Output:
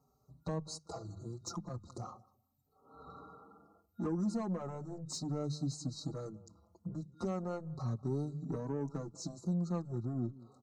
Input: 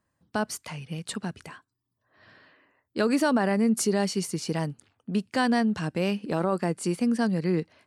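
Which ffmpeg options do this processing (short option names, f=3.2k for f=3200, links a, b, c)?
-filter_complex "[0:a]afftfilt=real='re*(1-between(b*sr/4096,1900,5100))':imag='im*(1-between(b*sr/4096,1900,5100))':win_size=4096:overlap=0.75,acompressor=threshold=-43dB:ratio=3,asetrate=32667,aresample=44100,highpass=f=100:p=1,lowshelf=f=490:g=7.5,bandreject=f=50:t=h:w=6,bandreject=f=100:t=h:w=6,bandreject=f=150:t=h:w=6,bandreject=f=200:t=h:w=6,asplit=2[a][b];[b]adelay=191,lowpass=f=1.1k:p=1,volume=-21dB,asplit=2[c][d];[d]adelay=191,lowpass=f=1.1k:p=1,volume=0.18[e];[c][e]amix=inputs=2:normalize=0[f];[a][f]amix=inputs=2:normalize=0,asoftclip=type=tanh:threshold=-30.5dB,asplit=2[g][h];[h]adelay=4.9,afreqshift=0.37[i];[g][i]amix=inputs=2:normalize=1,volume=4dB"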